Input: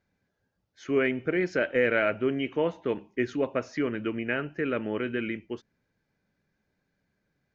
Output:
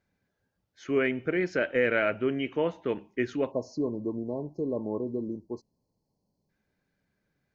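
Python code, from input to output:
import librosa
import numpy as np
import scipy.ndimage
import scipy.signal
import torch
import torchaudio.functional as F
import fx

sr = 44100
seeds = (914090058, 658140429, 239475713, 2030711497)

y = fx.spec_erase(x, sr, start_s=3.51, length_s=2.99, low_hz=1100.0, high_hz=4000.0)
y = y * 10.0 ** (-1.0 / 20.0)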